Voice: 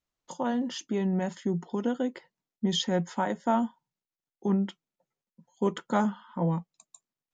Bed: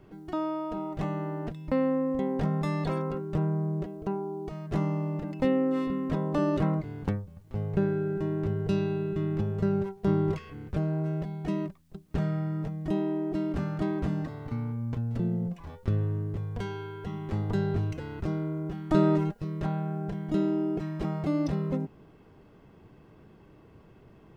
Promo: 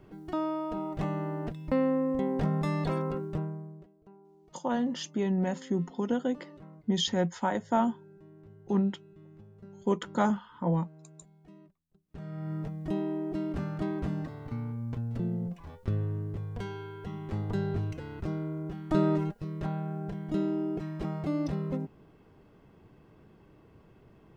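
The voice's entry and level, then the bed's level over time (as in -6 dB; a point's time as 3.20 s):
4.25 s, -0.5 dB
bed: 3.24 s -0.5 dB
3.96 s -23.5 dB
11.95 s -23.5 dB
12.52 s -3 dB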